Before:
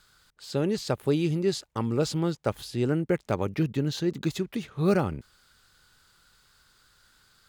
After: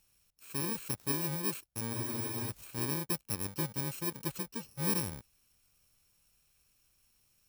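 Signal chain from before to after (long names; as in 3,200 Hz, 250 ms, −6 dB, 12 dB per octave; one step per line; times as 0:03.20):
samples in bit-reversed order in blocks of 64 samples
frozen spectrum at 0:01.95, 0.54 s
level −9 dB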